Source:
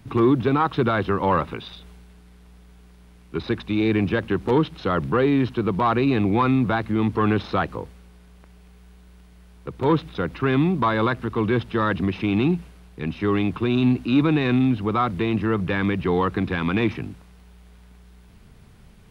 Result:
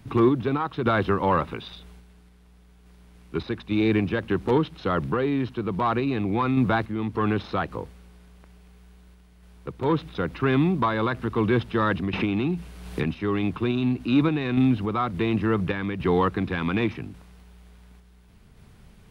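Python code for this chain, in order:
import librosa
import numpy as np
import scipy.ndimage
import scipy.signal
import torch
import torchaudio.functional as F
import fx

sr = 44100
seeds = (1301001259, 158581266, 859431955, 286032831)

y = fx.tremolo_random(x, sr, seeds[0], hz=3.5, depth_pct=55)
y = fx.band_squash(y, sr, depth_pct=100, at=(12.13, 13.04))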